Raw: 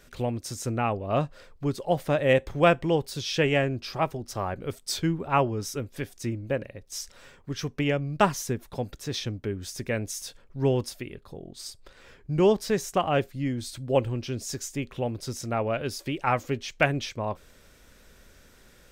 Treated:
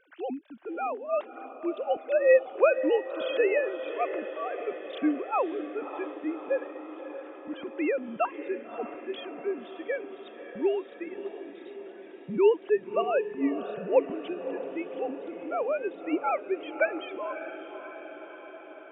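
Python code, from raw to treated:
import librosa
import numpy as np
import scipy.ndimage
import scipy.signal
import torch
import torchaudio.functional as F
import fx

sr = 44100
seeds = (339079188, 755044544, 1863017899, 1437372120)

y = fx.sine_speech(x, sr)
y = fx.echo_diffused(y, sr, ms=589, feedback_pct=67, wet_db=-11.0)
y = F.gain(torch.from_numpy(y), -2.0).numpy()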